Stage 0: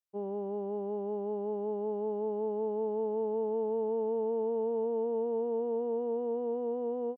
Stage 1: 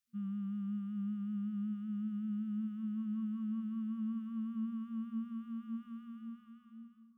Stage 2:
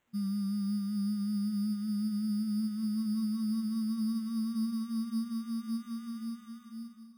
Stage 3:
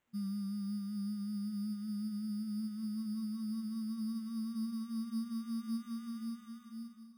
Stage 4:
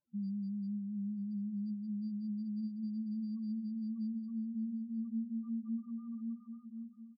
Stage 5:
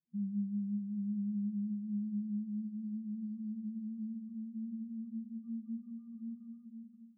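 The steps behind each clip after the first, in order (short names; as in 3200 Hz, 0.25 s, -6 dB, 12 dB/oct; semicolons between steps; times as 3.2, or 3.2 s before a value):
ending faded out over 1.26 s; FFT band-reject 230–1100 Hz; band-limited delay 0.534 s, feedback 63%, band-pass 400 Hz, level -11 dB; gain +5 dB
in parallel at 0 dB: compressor, threshold -47 dBFS, peak gain reduction 12 dB; on the sum: sample-and-hold 9×; gain +3.5 dB
vocal rider within 3 dB; gain -5.5 dB
loudest bins only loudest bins 4; echo 0.933 s -21 dB
band-pass 160 Hz, Q 1.8; shoebox room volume 1900 m³, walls furnished, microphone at 0.82 m; gain +2 dB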